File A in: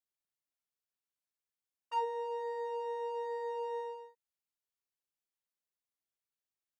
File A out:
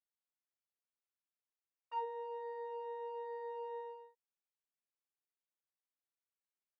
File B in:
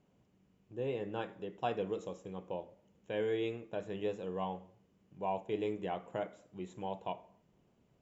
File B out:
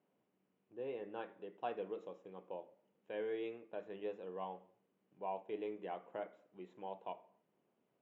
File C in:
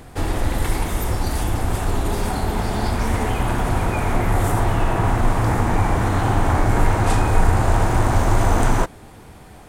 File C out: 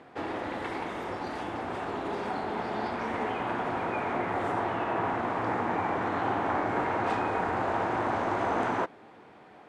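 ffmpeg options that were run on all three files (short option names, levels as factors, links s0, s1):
-af "highpass=280,lowpass=2700,volume=0.531"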